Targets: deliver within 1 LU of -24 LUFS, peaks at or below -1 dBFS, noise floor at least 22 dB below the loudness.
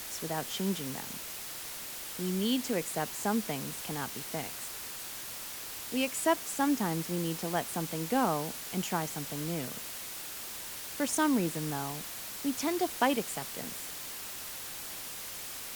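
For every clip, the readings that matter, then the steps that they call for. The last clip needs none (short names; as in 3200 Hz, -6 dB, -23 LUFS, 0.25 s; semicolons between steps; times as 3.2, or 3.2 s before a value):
noise floor -42 dBFS; noise floor target -56 dBFS; loudness -33.5 LUFS; peak -13.0 dBFS; loudness target -24.0 LUFS
-> denoiser 14 dB, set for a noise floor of -42 dBFS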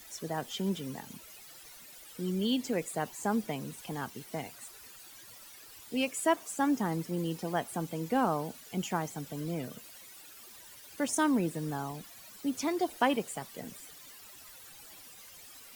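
noise floor -52 dBFS; noise floor target -56 dBFS
-> denoiser 6 dB, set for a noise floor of -52 dBFS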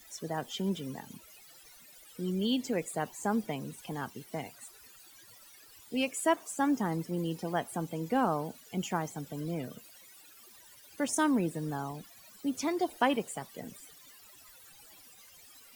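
noise floor -56 dBFS; loudness -33.5 LUFS; peak -13.5 dBFS; loudness target -24.0 LUFS
-> gain +9.5 dB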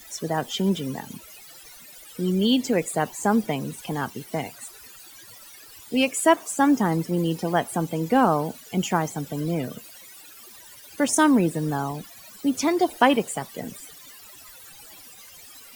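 loudness -24.0 LUFS; peak -4.0 dBFS; noise floor -47 dBFS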